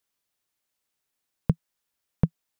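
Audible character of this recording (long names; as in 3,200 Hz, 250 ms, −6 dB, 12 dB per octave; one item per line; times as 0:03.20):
background noise floor −82 dBFS
spectral slope −11.0 dB per octave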